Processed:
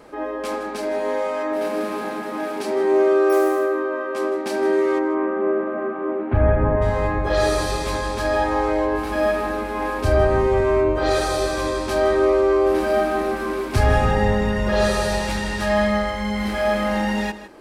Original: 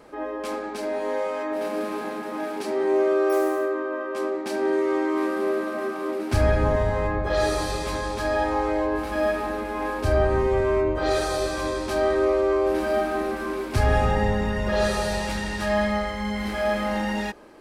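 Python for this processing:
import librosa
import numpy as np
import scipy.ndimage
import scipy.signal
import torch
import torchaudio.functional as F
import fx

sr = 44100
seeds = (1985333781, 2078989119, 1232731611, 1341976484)

y = fx.gaussian_blur(x, sr, sigma=4.3, at=(4.98, 6.81), fade=0.02)
y = y + 10.0 ** (-14.0 / 20.0) * np.pad(y, (int(158 * sr / 1000.0), 0))[:len(y)]
y = F.gain(torch.from_numpy(y), 3.5).numpy()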